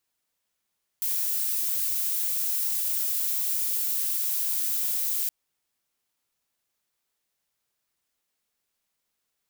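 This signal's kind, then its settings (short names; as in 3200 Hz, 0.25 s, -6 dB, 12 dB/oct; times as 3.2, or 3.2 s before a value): noise violet, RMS -27 dBFS 4.27 s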